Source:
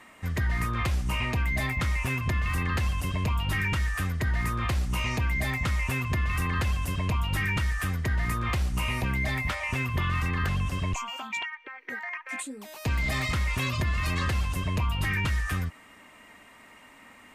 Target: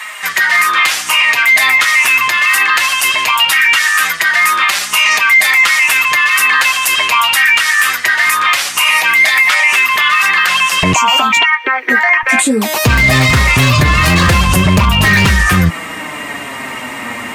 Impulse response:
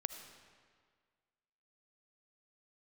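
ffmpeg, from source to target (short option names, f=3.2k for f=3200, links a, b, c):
-af "asetnsamples=n=441:p=0,asendcmd='10.83 highpass f 190;12.23 highpass f 79',highpass=1.4k,aeval=exprs='0.0668*(abs(mod(val(0)/0.0668+3,4)-2)-1)':c=same,flanger=delay=4.6:depth=4.5:regen=43:speed=0.2:shape=triangular,alimiter=level_in=33.5dB:limit=-1dB:release=50:level=0:latency=1,volume=-1dB"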